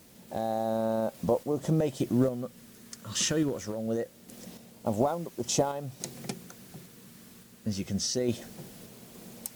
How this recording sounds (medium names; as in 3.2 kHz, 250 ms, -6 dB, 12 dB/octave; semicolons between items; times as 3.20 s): phasing stages 2, 0.24 Hz, lowest notch 780–1600 Hz; a quantiser's noise floor 10-bit, dither triangular; random-step tremolo; MP3